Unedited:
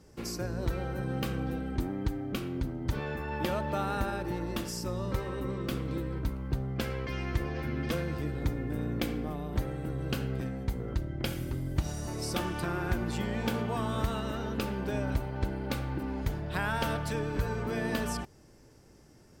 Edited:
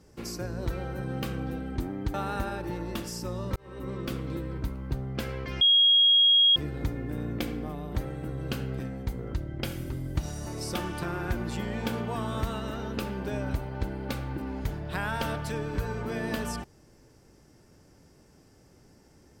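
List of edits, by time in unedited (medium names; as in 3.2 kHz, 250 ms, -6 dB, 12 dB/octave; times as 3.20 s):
2.14–3.75 s: delete
5.17–5.54 s: fade in linear
7.22–8.17 s: bleep 3.28 kHz -16.5 dBFS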